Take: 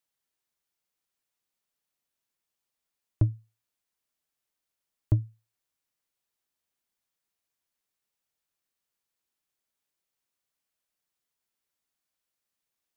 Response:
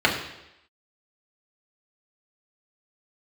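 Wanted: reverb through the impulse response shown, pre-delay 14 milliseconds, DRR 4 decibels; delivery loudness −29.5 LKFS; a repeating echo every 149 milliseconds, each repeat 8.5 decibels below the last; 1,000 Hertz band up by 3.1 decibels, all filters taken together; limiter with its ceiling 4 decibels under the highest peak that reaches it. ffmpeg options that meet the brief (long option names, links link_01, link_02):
-filter_complex "[0:a]equalizer=frequency=1000:width_type=o:gain=4,alimiter=limit=-16.5dB:level=0:latency=1,aecho=1:1:149|298|447|596:0.376|0.143|0.0543|0.0206,asplit=2[link_01][link_02];[1:a]atrim=start_sample=2205,adelay=14[link_03];[link_02][link_03]afir=irnorm=-1:irlink=0,volume=-23dB[link_04];[link_01][link_04]amix=inputs=2:normalize=0,volume=2dB"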